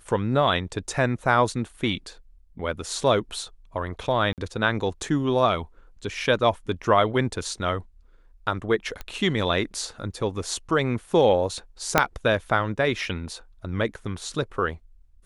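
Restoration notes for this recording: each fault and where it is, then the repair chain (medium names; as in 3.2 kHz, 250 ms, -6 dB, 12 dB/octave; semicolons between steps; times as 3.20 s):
4.33–4.38 s: dropout 48 ms
9.01 s: pop -19 dBFS
11.98 s: pop -1 dBFS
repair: de-click; interpolate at 4.33 s, 48 ms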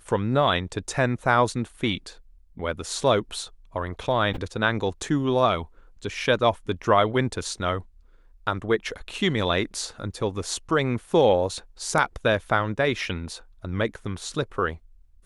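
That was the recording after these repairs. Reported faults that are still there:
11.98 s: pop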